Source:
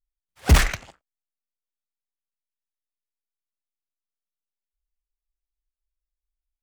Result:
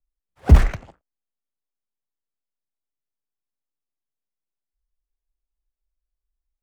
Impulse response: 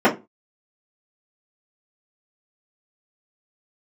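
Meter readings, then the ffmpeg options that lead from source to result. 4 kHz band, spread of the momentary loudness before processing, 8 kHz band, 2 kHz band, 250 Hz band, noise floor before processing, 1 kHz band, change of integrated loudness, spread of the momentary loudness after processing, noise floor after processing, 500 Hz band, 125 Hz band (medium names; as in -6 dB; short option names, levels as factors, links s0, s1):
-12.0 dB, 14 LU, -14.0 dB, -7.5 dB, +3.5 dB, under -85 dBFS, -2.0 dB, +3.5 dB, 13 LU, under -85 dBFS, +1.5 dB, +4.5 dB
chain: -filter_complex "[0:a]acrossover=split=140[s0][s1];[s1]acompressor=threshold=0.126:ratio=6[s2];[s0][s2]amix=inputs=2:normalize=0,tiltshelf=f=1500:g=9,volume=0.631"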